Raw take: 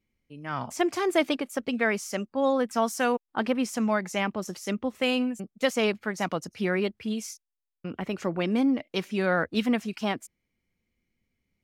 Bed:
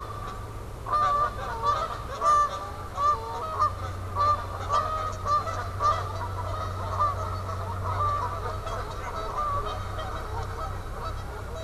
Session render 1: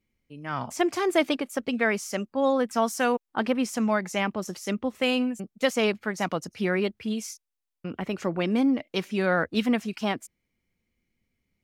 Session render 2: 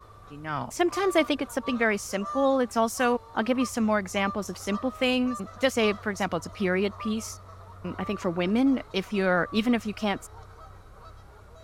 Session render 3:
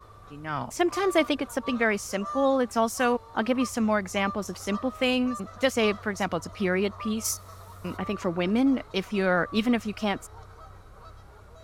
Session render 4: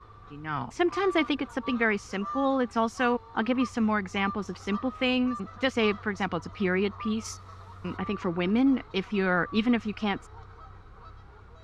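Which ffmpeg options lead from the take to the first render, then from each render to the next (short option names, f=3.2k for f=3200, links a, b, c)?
-af "volume=1dB"
-filter_complex "[1:a]volume=-14dB[a];[0:a][a]amix=inputs=2:normalize=0"
-filter_complex "[0:a]asplit=3[a][b][c];[a]afade=t=out:st=7.24:d=0.02[d];[b]aemphasis=mode=production:type=75kf,afade=t=in:st=7.24:d=0.02,afade=t=out:st=7.96:d=0.02[e];[c]afade=t=in:st=7.96:d=0.02[f];[d][e][f]amix=inputs=3:normalize=0"
-af "lowpass=3.9k,equalizer=f=600:t=o:w=0.22:g=-15"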